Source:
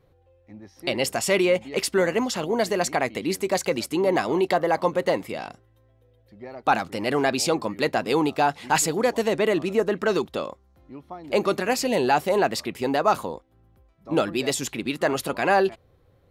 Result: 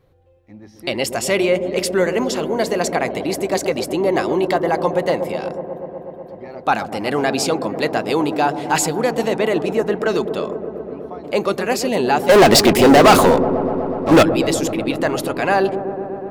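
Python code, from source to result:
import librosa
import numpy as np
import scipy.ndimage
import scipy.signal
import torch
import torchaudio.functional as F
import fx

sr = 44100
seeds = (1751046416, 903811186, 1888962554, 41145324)

y = fx.leveller(x, sr, passes=5, at=(12.29, 14.23))
y = fx.echo_wet_lowpass(y, sr, ms=123, feedback_pct=85, hz=700.0, wet_db=-8.5)
y = F.gain(torch.from_numpy(y), 3.0).numpy()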